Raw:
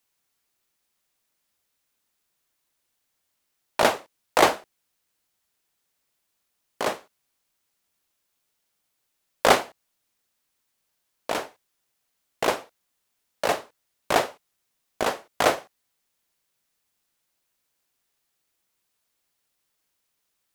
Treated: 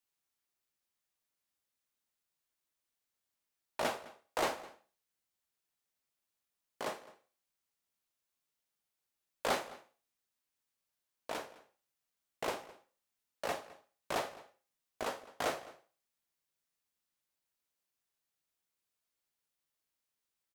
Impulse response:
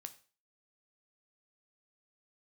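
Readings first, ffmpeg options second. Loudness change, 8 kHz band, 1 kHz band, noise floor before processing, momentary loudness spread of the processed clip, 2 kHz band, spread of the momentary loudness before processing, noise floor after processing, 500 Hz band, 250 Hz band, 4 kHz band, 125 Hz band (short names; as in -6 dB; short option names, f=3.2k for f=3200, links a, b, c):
-14.5 dB, -13.5 dB, -14.5 dB, -77 dBFS, 18 LU, -14.0 dB, 15 LU, under -85 dBFS, -14.0 dB, -14.0 dB, -14.0 dB, -13.5 dB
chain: -filter_complex "[0:a]asoftclip=type=tanh:threshold=-13dB,asplit=2[a][b];[b]adelay=209.9,volume=-19dB,highshelf=f=4k:g=-4.72[c];[a][c]amix=inputs=2:normalize=0[d];[1:a]atrim=start_sample=2205[e];[d][e]afir=irnorm=-1:irlink=0,volume=-6.5dB"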